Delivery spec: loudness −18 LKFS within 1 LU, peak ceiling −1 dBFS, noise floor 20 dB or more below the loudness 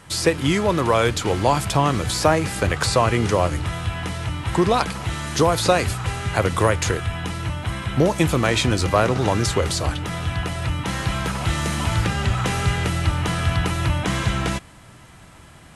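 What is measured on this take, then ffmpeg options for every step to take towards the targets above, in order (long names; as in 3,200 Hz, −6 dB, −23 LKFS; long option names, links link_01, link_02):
integrated loudness −21.5 LKFS; sample peak −5.0 dBFS; target loudness −18.0 LKFS
→ -af "volume=3.5dB"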